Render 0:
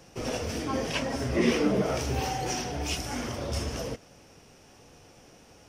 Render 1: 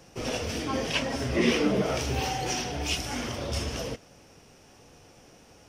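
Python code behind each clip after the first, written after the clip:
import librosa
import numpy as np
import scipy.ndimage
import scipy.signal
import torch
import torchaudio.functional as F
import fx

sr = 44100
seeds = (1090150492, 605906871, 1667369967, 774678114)

y = fx.dynamic_eq(x, sr, hz=3200.0, q=1.1, threshold_db=-49.0, ratio=4.0, max_db=5)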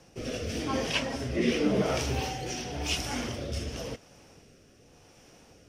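y = fx.rotary(x, sr, hz=0.9)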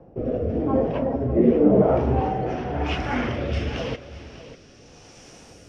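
y = fx.filter_sweep_lowpass(x, sr, from_hz=640.0, to_hz=9500.0, start_s=1.61, end_s=5.59, q=1.2)
y = y + 10.0 ** (-15.0 / 20.0) * np.pad(y, (int(595 * sr / 1000.0), 0))[:len(y)]
y = y * 10.0 ** (8.5 / 20.0)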